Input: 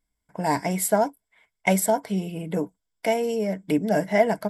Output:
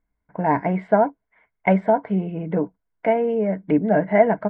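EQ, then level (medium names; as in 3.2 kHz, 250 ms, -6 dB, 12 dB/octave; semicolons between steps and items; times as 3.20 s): low-pass 2 kHz 24 dB/octave; +4.0 dB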